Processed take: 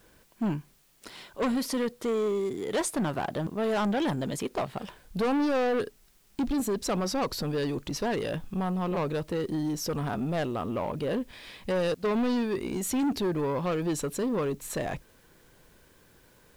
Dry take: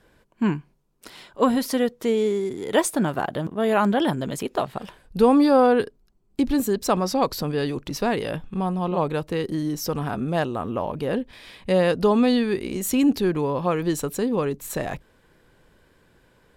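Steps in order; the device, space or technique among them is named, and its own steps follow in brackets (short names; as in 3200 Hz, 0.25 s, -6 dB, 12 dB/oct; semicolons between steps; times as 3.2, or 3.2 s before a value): 11.94–12.54 expander -20 dBFS; compact cassette (soft clip -22 dBFS, distortion -8 dB; LPF 11000 Hz; wow and flutter 16 cents; white noise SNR 35 dB); gain -1.5 dB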